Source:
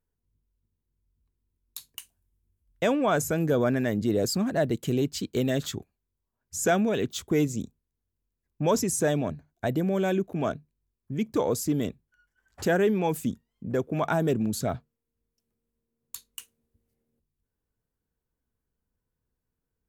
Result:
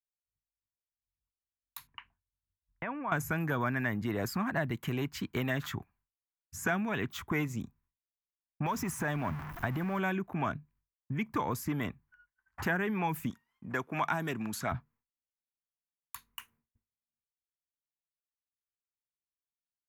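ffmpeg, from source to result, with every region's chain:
ffmpeg -i in.wav -filter_complex "[0:a]asettb=1/sr,asplit=3[link_01][link_02][link_03];[link_01]atrim=end=1.874[link_04];[link_02]atrim=start=1.87:end=3.12,asetpts=PTS-STARTPTS,afade=type=in:duration=0.004:curve=qsin,afade=type=out:start_time=1.246:duration=0.004:curve=qsin,lowpass=frequency=2700:width=0.5412,lowpass=frequency=2700:width=1.3066,acompressor=threshold=-35dB:ratio=5:attack=3.2:release=140:knee=1:detection=peak[link_05];[link_03]atrim=start=3.116[link_06];[link_04][link_05]acrossfade=duration=0.004:curve1=hsin:curve2=qsin[link_07];[link_07][link_06]acrossfade=duration=0.004:curve1=qsin:curve2=hsin,asettb=1/sr,asplit=3[link_08][link_09][link_10];[link_08]atrim=end=8.664[link_11];[link_09]atrim=start=8.66:end=9.99,asetpts=PTS-STARTPTS,afade=type=in:duration=0.004:curve=qsin,afade=type=out:start_time=1.326:duration=0.004:curve=qsin,aeval=exprs='val(0)+0.5*0.0126*sgn(val(0))':channel_layout=same,acompressor=threshold=-25dB:ratio=3:attack=3.2:release=140:knee=1:detection=peak[link_12];[link_10]atrim=start=9.986[link_13];[link_11][link_12]acrossfade=duration=0.004:curve1=hsin:curve2=qsin[link_14];[link_14][link_13]acrossfade=duration=0.004:curve1=qsin:curve2=hsin,asettb=1/sr,asplit=3[link_15][link_16][link_17];[link_15]atrim=end=13.304[link_18];[link_16]atrim=start=13.3:end=14.72,asetpts=PTS-STARTPTS,afade=type=in:duration=0.004:curve=qsin,afade=type=out:start_time=1.416:duration=0.004:curve=qsin,lowpass=6600,aemphasis=mode=production:type=riaa[link_19];[link_17]atrim=start=14.716[link_20];[link_18][link_19]acrossfade=duration=0.004:curve1=hsin:curve2=qsin[link_21];[link_21][link_20]acrossfade=duration=0.004:curve1=qsin:curve2=hsin,agate=range=-33dB:threshold=-59dB:ratio=3:detection=peak,equalizer=frequency=125:width_type=o:width=1:gain=3,equalizer=frequency=500:width_type=o:width=1:gain=-12,equalizer=frequency=1000:width_type=o:width=1:gain=12,equalizer=frequency=2000:width_type=o:width=1:gain=7,equalizer=frequency=4000:width_type=o:width=1:gain=-8,equalizer=frequency=8000:width_type=o:width=1:gain=-11,acrossover=split=460|2200[link_22][link_23][link_24];[link_22]acompressor=threshold=-33dB:ratio=4[link_25];[link_23]acompressor=threshold=-34dB:ratio=4[link_26];[link_24]acompressor=threshold=-39dB:ratio=4[link_27];[link_25][link_26][link_27]amix=inputs=3:normalize=0" out.wav

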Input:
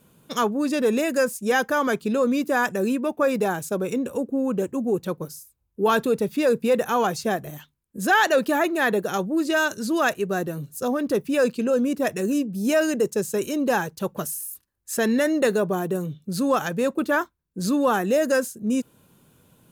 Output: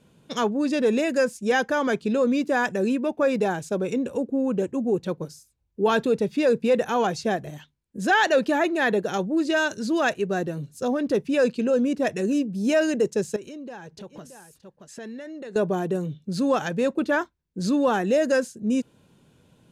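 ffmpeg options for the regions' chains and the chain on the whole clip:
ffmpeg -i in.wav -filter_complex "[0:a]asettb=1/sr,asplit=3[link_01][link_02][link_03];[link_01]atrim=end=13.364[link_04];[link_02]atrim=start=13.36:end=15.56,asetpts=PTS-STARTPTS,afade=type=in:duration=0.004:curve=qsin,afade=type=out:start_time=2.196:duration=0.004:curve=qsin,highshelf=frequency=11000:gain=-11.5,aecho=1:1:624:0.112,atrim=end_sample=97020,acompressor=threshold=-38dB:ratio=4:attack=3.2:release=140:knee=1:detection=peak[link_05];[link_03]atrim=start=15.556[link_06];[link_04][link_05]acrossfade=duration=0.004:curve1=hsin:curve2=qsin[link_07];[link_07][link_06]acrossfade=duration=0.004:curve1=qsin:curve2=hsin,lowpass=6300,equalizer=frequency=1200:width=3:gain=-5.5" out.wav

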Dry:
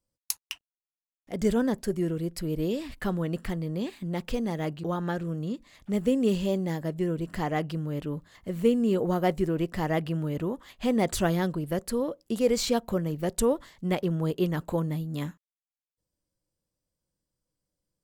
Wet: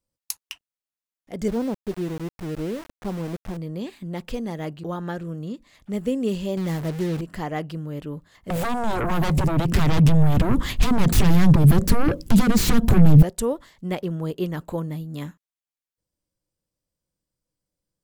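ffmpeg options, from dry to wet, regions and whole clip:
ffmpeg -i in.wav -filter_complex "[0:a]asettb=1/sr,asplit=3[link_01][link_02][link_03];[link_01]atrim=end=1.484[link_04];[link_02]atrim=start=1.48:end=3.57,asetpts=PTS-STARTPTS,afade=type=in:duration=0.004:curve=qsin,afade=type=out:start_time=2.086:duration=0.004:curve=qsin,lowpass=frequency=1100:width=0.5412,lowpass=frequency=1100:width=1.3066,aeval=exprs='val(0)*gte(abs(val(0)),0.0188)':channel_layout=same[link_05];[link_03]atrim=start=3.566[link_06];[link_04][link_05]acrossfade=duration=0.004:curve1=hsin:curve2=qsin[link_07];[link_07][link_06]acrossfade=duration=0.004:curve1=qsin:curve2=hsin,asettb=1/sr,asplit=3[link_08][link_09][link_10];[link_08]atrim=end=6.574[link_11];[link_09]atrim=start=6.57:end=7.21,asetpts=PTS-STARTPTS,afade=type=in:duration=0.004:curve=qsin,afade=type=out:start_time=0.636:duration=0.004:curve=qsin,aeval=exprs='val(0)+0.5*0.02*sgn(val(0))':channel_layout=same,equalizer=frequency=140:width_type=o:width=0.87:gain=4.5,acrusher=bits=5:mix=0:aa=0.5[link_12];[link_10]atrim=start=7.206[link_13];[link_11][link_12]acrossfade=duration=0.004:curve1=hsin:curve2=qsin[link_14];[link_14][link_13]acrossfade=duration=0.004:curve1=qsin:curve2=hsin,asettb=1/sr,asplit=3[link_15][link_16][link_17];[link_15]atrim=end=8.504[link_18];[link_16]atrim=start=8.5:end=13.23,asetpts=PTS-STARTPTS,afade=type=in:duration=0.004:curve=qsin,afade=type=out:start_time=4.726:duration=0.004:curve=qsin,acompressor=threshold=-33dB:ratio=8:attack=3.2:release=140:knee=1:detection=peak,aeval=exprs='0.0841*sin(PI/2*7.08*val(0)/0.0841)':channel_layout=same,asubboost=boost=9.5:cutoff=240[link_19];[link_17]atrim=start=13.226[link_20];[link_18][link_19]acrossfade=duration=0.004:curve1=hsin:curve2=qsin[link_21];[link_21][link_20]acrossfade=duration=0.004:curve1=qsin:curve2=hsin" out.wav

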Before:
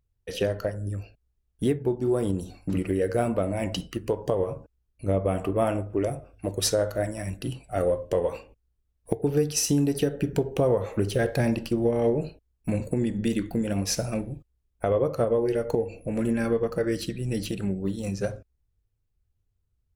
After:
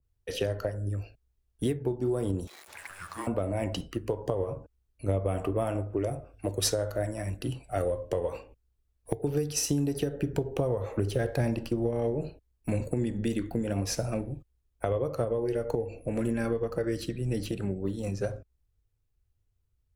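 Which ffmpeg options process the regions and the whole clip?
ffmpeg -i in.wav -filter_complex "[0:a]asettb=1/sr,asplit=3[link_01][link_02][link_03];[link_01]atrim=end=2.474[link_04];[link_02]atrim=start=2.47:end=3.27,asetpts=PTS-STARTPTS,afade=type=in:duration=0.004:curve=qsin,afade=type=out:start_time=0.796:duration=0.004:curve=qsin,aeval=exprs='val(0)+0.5*0.0106*sgn(val(0))':channel_layout=same,highpass=frequency=980:width=0.5412,highpass=frequency=980:width=1.3066,afreqshift=-380[link_05];[link_03]atrim=start=3.266[link_06];[link_04][link_05]acrossfade=duration=0.004:curve1=hsin:curve2=qsin[link_07];[link_07][link_06]acrossfade=duration=0.004:curve1=qsin:curve2=hsin,equalizer=frequency=190:width=3.2:gain=-6,acrossover=split=140|3000[link_08][link_09][link_10];[link_09]acompressor=threshold=-26dB:ratio=6[link_11];[link_08][link_11][link_10]amix=inputs=3:normalize=0,adynamicequalizer=threshold=0.00316:dfrequency=1800:dqfactor=0.7:tfrequency=1800:tqfactor=0.7:attack=5:release=100:ratio=0.375:range=3:mode=cutabove:tftype=highshelf" out.wav

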